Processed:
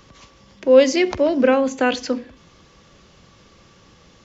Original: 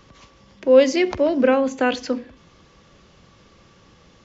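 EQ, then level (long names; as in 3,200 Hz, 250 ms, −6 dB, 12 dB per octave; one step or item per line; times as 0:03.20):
high-shelf EQ 4,900 Hz +5 dB
+1.0 dB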